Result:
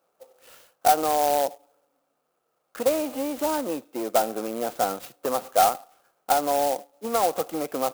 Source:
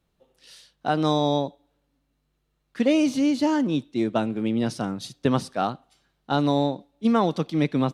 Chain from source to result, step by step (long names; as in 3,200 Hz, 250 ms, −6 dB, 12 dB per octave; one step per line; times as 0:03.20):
dynamic equaliser 730 Hz, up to +4 dB, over −38 dBFS, Q 3.5
in parallel at −0.5 dB: brickwall limiter −18.5 dBFS, peak gain reduction 11 dB
on the sum: downward compressor, threshold −18 dBFS, peak gain reduction 6.5 dB
sine wavefolder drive 4 dB, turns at −8 dBFS
loudspeaker in its box 460–4,000 Hz, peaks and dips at 510 Hz +9 dB, 740 Hz +8 dB, 1,300 Hz +8 dB, 1,900 Hz −7 dB, 3,600 Hz −8 dB
converter with an unsteady clock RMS 0.068 ms
level −9 dB